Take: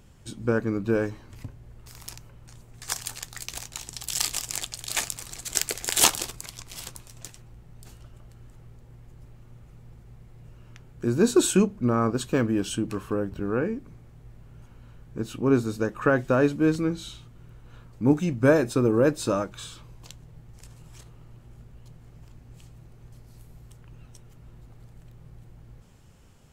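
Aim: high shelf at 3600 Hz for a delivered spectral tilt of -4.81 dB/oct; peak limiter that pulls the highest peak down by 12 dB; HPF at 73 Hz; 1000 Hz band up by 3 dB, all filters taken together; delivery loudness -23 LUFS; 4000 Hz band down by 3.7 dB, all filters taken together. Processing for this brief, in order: HPF 73 Hz; bell 1000 Hz +4 dB; high shelf 3600 Hz +5 dB; bell 4000 Hz -9 dB; gain +4 dB; limiter -8 dBFS

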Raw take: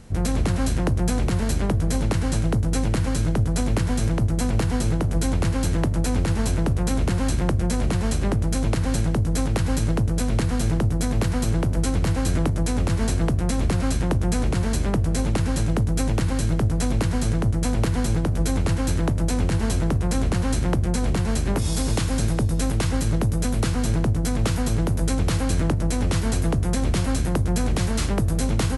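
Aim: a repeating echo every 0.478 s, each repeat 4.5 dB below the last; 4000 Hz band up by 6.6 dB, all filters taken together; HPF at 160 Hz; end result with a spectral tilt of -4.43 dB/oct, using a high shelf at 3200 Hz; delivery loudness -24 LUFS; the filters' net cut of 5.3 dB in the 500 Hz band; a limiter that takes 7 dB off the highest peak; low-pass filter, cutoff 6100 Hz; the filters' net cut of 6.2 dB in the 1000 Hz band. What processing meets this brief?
HPF 160 Hz; LPF 6100 Hz; bell 500 Hz -5 dB; bell 1000 Hz -7.5 dB; high shelf 3200 Hz +6 dB; bell 4000 Hz +5 dB; limiter -17.5 dBFS; feedback echo 0.478 s, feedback 60%, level -4.5 dB; gain +2.5 dB

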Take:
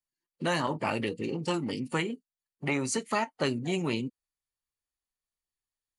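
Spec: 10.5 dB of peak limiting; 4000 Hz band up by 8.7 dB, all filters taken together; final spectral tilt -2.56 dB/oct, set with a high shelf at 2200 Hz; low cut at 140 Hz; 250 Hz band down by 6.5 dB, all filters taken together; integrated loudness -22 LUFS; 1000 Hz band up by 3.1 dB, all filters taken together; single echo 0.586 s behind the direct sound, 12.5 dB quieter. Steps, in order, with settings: HPF 140 Hz; bell 250 Hz -8.5 dB; bell 1000 Hz +3 dB; high shelf 2200 Hz +4.5 dB; bell 4000 Hz +7.5 dB; limiter -20 dBFS; echo 0.586 s -12.5 dB; gain +11 dB

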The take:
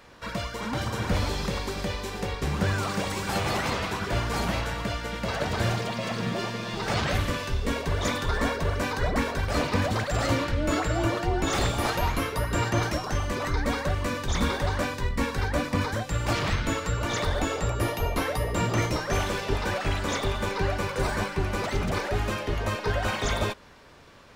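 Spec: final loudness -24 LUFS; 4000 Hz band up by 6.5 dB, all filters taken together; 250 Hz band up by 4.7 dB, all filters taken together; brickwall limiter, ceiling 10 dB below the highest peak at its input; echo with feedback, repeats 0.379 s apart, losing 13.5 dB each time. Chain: bell 250 Hz +6 dB; bell 4000 Hz +8 dB; limiter -18.5 dBFS; feedback echo 0.379 s, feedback 21%, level -13.5 dB; gain +4 dB

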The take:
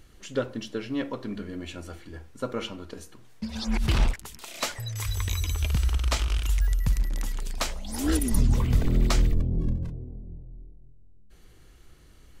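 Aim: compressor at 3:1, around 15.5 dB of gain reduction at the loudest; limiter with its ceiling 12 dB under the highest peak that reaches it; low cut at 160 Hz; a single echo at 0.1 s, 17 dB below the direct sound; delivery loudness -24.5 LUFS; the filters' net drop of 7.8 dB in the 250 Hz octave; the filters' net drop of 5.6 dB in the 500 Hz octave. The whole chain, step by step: HPF 160 Hz; bell 250 Hz -7.5 dB; bell 500 Hz -4.5 dB; compressor 3:1, threshold -48 dBFS; limiter -39 dBFS; echo 0.1 s -17 dB; gain +25.5 dB

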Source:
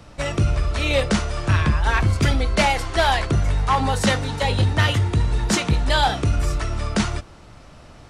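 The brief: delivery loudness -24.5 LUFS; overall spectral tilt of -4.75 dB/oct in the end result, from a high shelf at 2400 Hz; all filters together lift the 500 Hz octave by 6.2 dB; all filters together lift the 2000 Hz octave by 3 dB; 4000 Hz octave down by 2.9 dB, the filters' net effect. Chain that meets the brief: bell 500 Hz +7.5 dB; bell 2000 Hz +5.5 dB; high shelf 2400 Hz -3 dB; bell 4000 Hz -3.5 dB; gain -5.5 dB

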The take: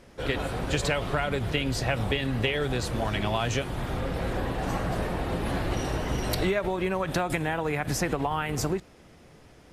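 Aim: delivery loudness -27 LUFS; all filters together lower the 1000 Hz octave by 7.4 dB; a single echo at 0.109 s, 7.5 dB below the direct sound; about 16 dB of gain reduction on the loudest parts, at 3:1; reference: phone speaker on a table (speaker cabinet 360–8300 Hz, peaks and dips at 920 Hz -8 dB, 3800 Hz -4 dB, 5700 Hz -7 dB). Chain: bell 1000 Hz -7 dB; compressor 3:1, threshold -46 dBFS; speaker cabinet 360–8300 Hz, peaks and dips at 920 Hz -8 dB, 3800 Hz -4 dB, 5700 Hz -7 dB; echo 0.109 s -7.5 dB; gain +21 dB

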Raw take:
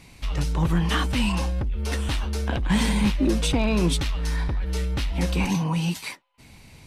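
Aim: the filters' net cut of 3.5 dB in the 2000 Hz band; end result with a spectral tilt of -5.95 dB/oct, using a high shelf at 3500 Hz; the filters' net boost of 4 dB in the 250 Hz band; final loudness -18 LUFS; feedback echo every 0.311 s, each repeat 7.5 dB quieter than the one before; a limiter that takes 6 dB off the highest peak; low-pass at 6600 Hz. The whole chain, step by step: LPF 6600 Hz; bell 250 Hz +5.5 dB; bell 2000 Hz -6.5 dB; high shelf 3500 Hz +5.5 dB; limiter -14.5 dBFS; feedback echo 0.311 s, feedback 42%, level -7.5 dB; gain +6 dB

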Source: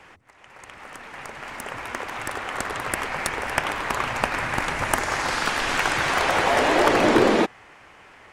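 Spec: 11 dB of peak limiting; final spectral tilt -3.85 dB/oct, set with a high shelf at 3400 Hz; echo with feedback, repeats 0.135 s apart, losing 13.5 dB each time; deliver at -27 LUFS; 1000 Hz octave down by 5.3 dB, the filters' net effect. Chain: bell 1000 Hz -6.5 dB; high shelf 3400 Hz -5 dB; limiter -15.5 dBFS; feedback echo 0.135 s, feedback 21%, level -13.5 dB; gain +0.5 dB

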